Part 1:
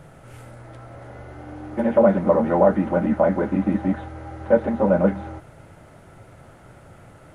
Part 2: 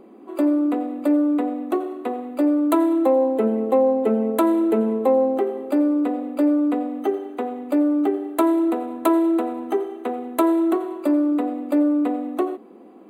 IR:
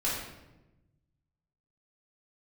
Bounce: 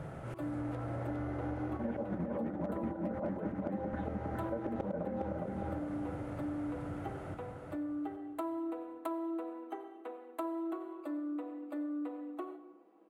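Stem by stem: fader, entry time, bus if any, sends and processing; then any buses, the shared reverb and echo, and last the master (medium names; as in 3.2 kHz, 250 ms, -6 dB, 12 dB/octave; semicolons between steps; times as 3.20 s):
-0.5 dB, 0.00 s, no send, echo send -3.5 dB, high-pass 41 Hz 12 dB/octave; slow attack 208 ms; compressor with a negative ratio -26 dBFS, ratio -0.5
-15.0 dB, 0.00 s, send -14 dB, no echo send, high-pass 790 Hz 6 dB/octave; comb 6.2 ms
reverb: on, RT60 1.0 s, pre-delay 3 ms
echo: feedback delay 410 ms, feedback 33%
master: treble shelf 2.6 kHz -11.5 dB; overload inside the chain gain 15.5 dB; compression, threshold -34 dBFS, peak gain reduction 13 dB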